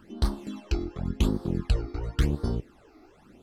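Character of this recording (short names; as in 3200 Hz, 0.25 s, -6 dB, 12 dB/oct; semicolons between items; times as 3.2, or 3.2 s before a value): phasing stages 12, 0.92 Hz, lowest notch 160–2500 Hz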